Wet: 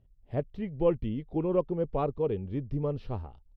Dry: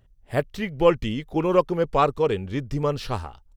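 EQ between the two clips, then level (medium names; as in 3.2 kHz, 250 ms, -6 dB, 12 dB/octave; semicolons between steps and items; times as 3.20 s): peaking EQ 1.5 kHz -12.5 dB 1.6 oct; dynamic bell 4.7 kHz, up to -7 dB, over -53 dBFS, Q 0.71; distance through air 310 m; -4.0 dB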